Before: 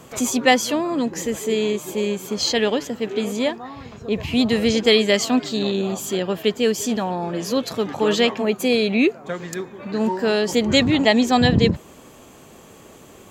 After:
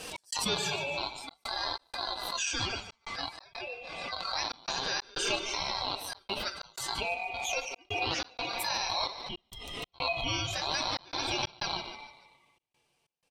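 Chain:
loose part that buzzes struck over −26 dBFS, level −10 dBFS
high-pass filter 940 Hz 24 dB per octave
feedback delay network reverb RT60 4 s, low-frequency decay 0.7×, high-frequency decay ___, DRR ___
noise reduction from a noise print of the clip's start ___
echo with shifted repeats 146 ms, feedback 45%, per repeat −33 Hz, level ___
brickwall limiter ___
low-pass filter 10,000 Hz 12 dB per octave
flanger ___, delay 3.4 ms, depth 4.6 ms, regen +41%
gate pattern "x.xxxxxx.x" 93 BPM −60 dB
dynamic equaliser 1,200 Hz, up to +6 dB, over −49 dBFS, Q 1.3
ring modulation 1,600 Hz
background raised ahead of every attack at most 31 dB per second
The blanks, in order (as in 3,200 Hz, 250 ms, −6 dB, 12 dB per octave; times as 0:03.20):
0.3×, 4.5 dB, 19 dB, −15.5 dB, −16 dBFS, 0.53 Hz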